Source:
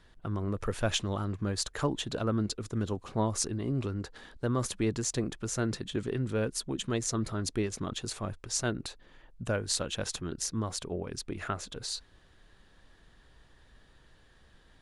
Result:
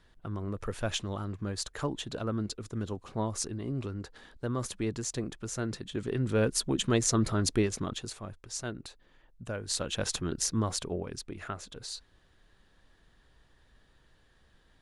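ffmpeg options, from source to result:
ffmpeg -i in.wav -af "volume=14.5dB,afade=type=in:start_time=5.92:duration=0.6:silence=0.398107,afade=type=out:start_time=7.51:duration=0.67:silence=0.281838,afade=type=in:start_time=9.55:duration=0.58:silence=0.334965,afade=type=out:start_time=10.68:duration=0.62:silence=0.421697" out.wav

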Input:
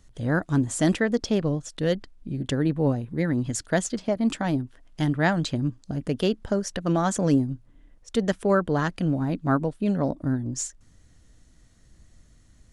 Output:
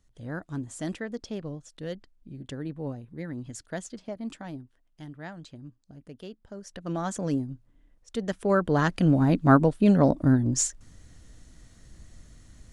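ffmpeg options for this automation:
ffmpeg -i in.wav -af "volume=12dB,afade=type=out:start_time=4.15:duration=0.88:silence=0.446684,afade=type=in:start_time=6.51:duration=0.51:silence=0.266073,afade=type=in:start_time=8.25:duration=1.05:silence=0.251189" out.wav

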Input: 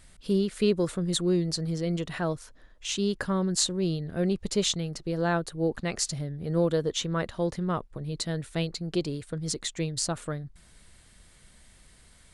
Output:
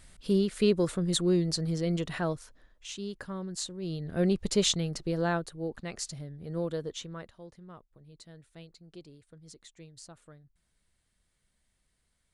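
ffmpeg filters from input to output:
ffmpeg -i in.wav -af "volume=10.5dB,afade=type=out:start_time=2.1:duration=0.85:silence=0.316228,afade=type=in:start_time=3.81:duration=0.4:silence=0.281838,afade=type=out:start_time=5.02:duration=0.58:silence=0.375837,afade=type=out:start_time=6.83:duration=0.57:silence=0.251189" out.wav

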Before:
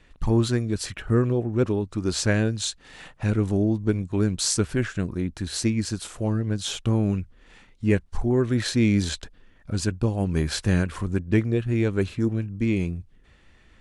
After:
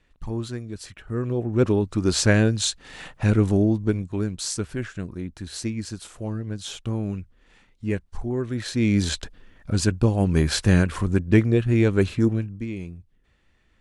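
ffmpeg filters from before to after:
ffmpeg -i in.wav -af "volume=13dB,afade=type=in:start_time=1.13:duration=0.6:silence=0.237137,afade=type=out:start_time=3.43:duration=0.89:silence=0.354813,afade=type=in:start_time=8.66:duration=0.56:silence=0.354813,afade=type=out:start_time=12.24:duration=0.43:silence=0.237137" out.wav

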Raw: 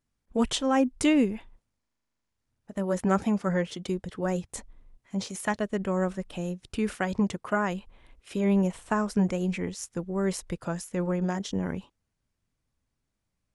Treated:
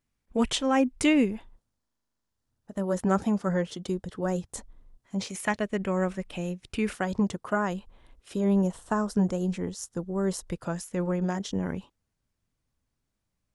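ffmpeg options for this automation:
ffmpeg -i in.wav -af "asetnsamples=nb_out_samples=441:pad=0,asendcmd='1.31 equalizer g -6.5;5.2 equalizer g 5.5;6.93 equalizer g -6;8.34 equalizer g -12;10.5 equalizer g -1.5',equalizer=frequency=2300:width_type=o:width=0.6:gain=4" out.wav

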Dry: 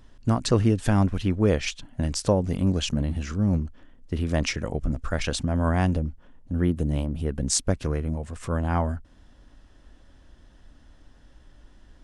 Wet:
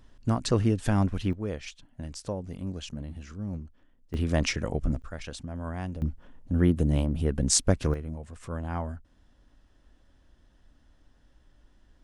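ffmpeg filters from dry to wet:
ffmpeg -i in.wav -af "asetnsamples=nb_out_samples=441:pad=0,asendcmd='1.33 volume volume -12dB;4.14 volume volume -1dB;5.02 volume volume -12dB;6.02 volume volume 1dB;7.94 volume volume -8dB',volume=-3.5dB" out.wav

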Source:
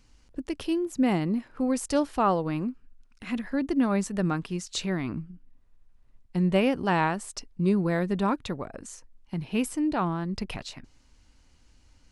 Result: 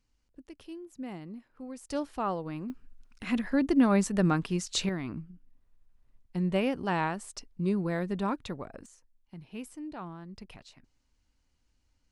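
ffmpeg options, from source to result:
ffmpeg -i in.wav -af "asetnsamples=nb_out_samples=441:pad=0,asendcmd='1.9 volume volume -8dB;2.7 volume volume 1.5dB;4.89 volume volume -5dB;8.86 volume volume -14dB',volume=-16dB" out.wav

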